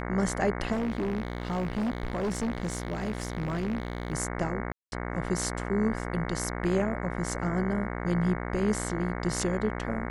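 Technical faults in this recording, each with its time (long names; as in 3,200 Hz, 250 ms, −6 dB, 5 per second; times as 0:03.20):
mains buzz 60 Hz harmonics 37 −34 dBFS
0:00.72–0:04.13: clipping −26 dBFS
0:04.72–0:04.92: drop-out 201 ms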